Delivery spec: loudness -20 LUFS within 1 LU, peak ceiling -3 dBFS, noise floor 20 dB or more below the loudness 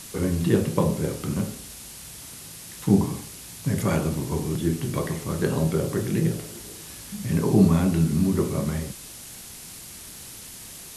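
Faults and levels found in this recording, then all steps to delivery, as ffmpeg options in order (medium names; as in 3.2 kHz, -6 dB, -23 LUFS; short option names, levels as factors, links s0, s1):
noise floor -42 dBFS; noise floor target -45 dBFS; loudness -24.5 LUFS; peak level -6.0 dBFS; loudness target -20.0 LUFS
-> -af "afftdn=nr=6:nf=-42"
-af "volume=1.68,alimiter=limit=0.708:level=0:latency=1"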